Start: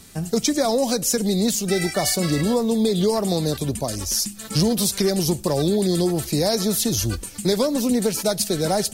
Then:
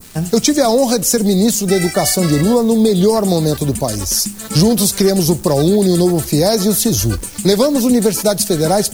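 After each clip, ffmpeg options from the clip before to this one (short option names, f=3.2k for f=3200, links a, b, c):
-af "acrusher=bits=8:dc=4:mix=0:aa=0.000001,adynamicequalizer=threshold=0.01:dfrequency=3100:dqfactor=0.73:tfrequency=3100:tqfactor=0.73:attack=5:release=100:ratio=0.375:range=2.5:mode=cutabove:tftype=bell,volume=8dB"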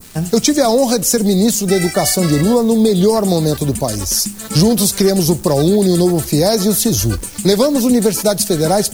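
-af anull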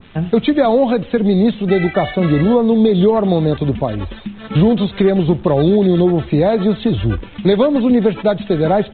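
-af "aresample=8000,aresample=44100"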